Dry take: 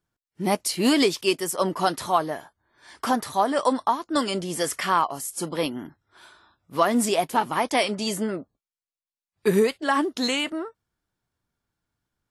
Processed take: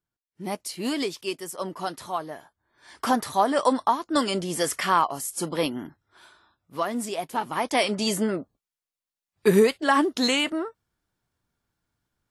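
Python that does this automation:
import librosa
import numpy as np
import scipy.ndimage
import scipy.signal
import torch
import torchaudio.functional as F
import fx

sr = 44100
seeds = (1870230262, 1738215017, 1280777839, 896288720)

y = fx.gain(x, sr, db=fx.line((2.24, -8.0), (3.09, 0.5), (5.81, 0.5), (7.1, -8.5), (8.0, 2.0)))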